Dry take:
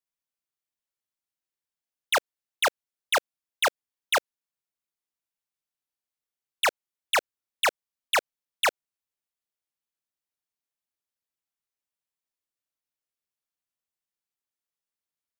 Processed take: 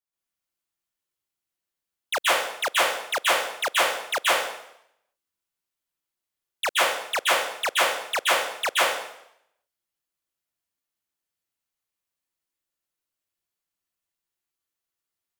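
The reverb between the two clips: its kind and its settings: plate-style reverb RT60 0.74 s, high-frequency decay 0.95×, pre-delay 115 ms, DRR -7.5 dB; trim -3.5 dB

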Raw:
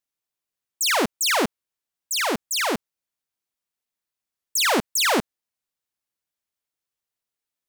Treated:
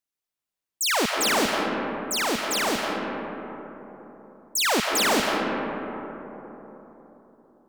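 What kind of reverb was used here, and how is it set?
algorithmic reverb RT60 4 s, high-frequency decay 0.3×, pre-delay 110 ms, DRR 0.5 dB; trim -2.5 dB

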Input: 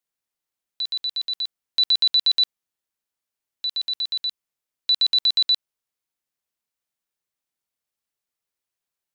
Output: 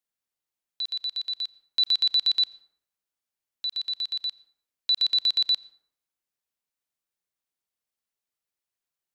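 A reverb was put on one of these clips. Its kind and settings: plate-style reverb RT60 0.76 s, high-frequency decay 0.5×, pre-delay 75 ms, DRR 20 dB; trim -3.5 dB

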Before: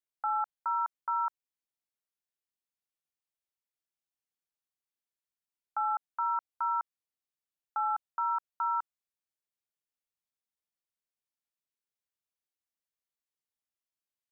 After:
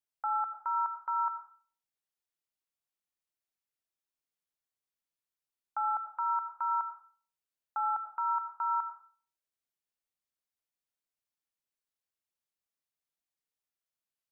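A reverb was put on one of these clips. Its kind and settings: algorithmic reverb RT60 0.47 s, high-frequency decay 0.6×, pre-delay 50 ms, DRR 9.5 dB; trim -1.5 dB

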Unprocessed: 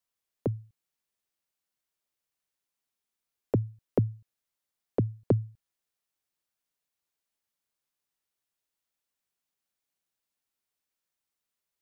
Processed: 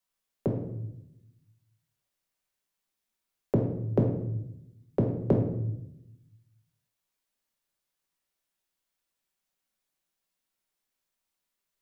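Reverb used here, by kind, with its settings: simulated room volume 240 m³, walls mixed, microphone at 1.1 m

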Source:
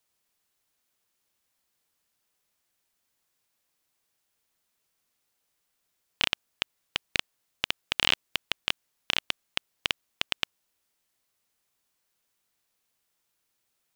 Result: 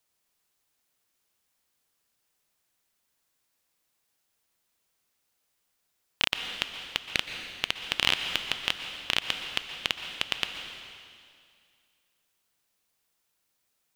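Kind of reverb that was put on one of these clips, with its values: plate-style reverb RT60 2.2 s, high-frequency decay 1×, pre-delay 110 ms, DRR 6 dB

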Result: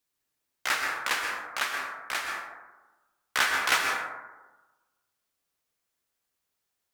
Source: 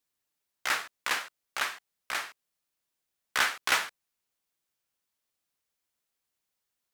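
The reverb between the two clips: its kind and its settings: plate-style reverb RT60 1.2 s, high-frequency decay 0.3×, pre-delay 110 ms, DRR 1.5 dB; trim +1 dB

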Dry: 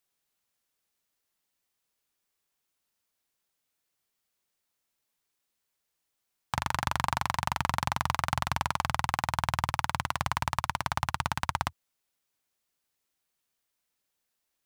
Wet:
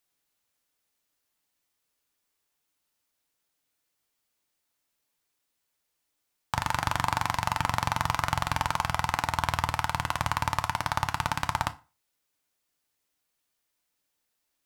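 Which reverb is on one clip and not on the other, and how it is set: FDN reverb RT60 0.33 s, low-frequency decay 0.95×, high-frequency decay 0.8×, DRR 9 dB; trim +1.5 dB

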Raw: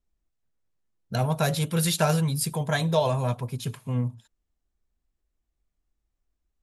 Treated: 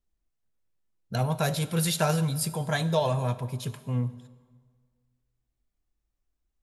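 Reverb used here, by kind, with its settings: plate-style reverb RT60 1.7 s, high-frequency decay 0.75×, DRR 14 dB; trim -2 dB

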